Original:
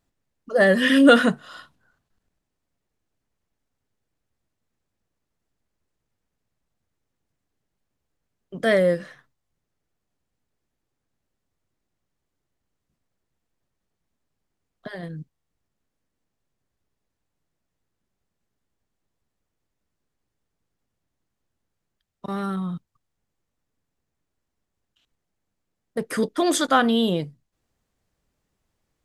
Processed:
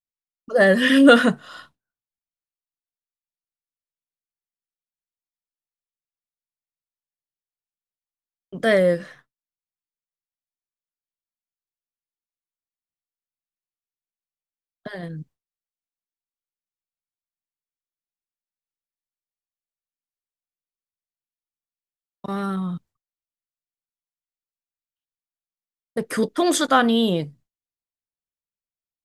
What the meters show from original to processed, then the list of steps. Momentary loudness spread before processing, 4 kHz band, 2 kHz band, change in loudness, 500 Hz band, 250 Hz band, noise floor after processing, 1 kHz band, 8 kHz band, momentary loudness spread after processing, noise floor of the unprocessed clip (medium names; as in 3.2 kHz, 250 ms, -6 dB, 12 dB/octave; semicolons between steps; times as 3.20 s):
21 LU, +1.5 dB, +1.5 dB, +1.5 dB, +1.5 dB, +1.5 dB, under -85 dBFS, +1.5 dB, +1.5 dB, 21 LU, -81 dBFS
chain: expander -46 dBFS; trim +1.5 dB